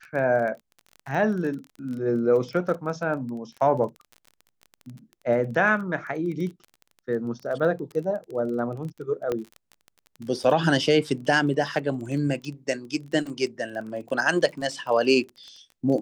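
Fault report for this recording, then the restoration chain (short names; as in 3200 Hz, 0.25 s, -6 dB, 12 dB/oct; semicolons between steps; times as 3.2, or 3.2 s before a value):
crackle 23/s -33 dBFS
9.32 pop -15 dBFS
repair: de-click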